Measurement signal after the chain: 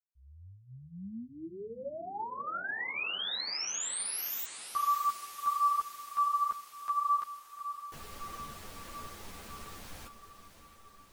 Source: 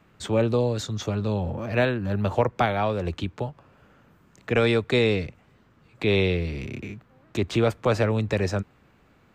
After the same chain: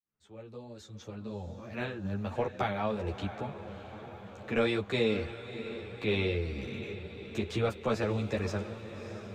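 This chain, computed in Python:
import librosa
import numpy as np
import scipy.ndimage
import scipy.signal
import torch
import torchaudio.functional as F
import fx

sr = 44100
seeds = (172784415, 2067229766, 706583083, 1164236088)

y = fx.fade_in_head(x, sr, length_s=2.94)
y = fx.echo_diffused(y, sr, ms=624, feedback_pct=66, wet_db=-11.5)
y = fx.ensemble(y, sr)
y = F.gain(torch.from_numpy(y), -4.5).numpy()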